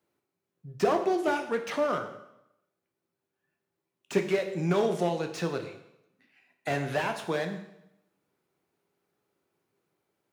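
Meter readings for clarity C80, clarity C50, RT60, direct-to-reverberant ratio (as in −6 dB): 11.5 dB, 9.0 dB, 0.80 s, 5.5 dB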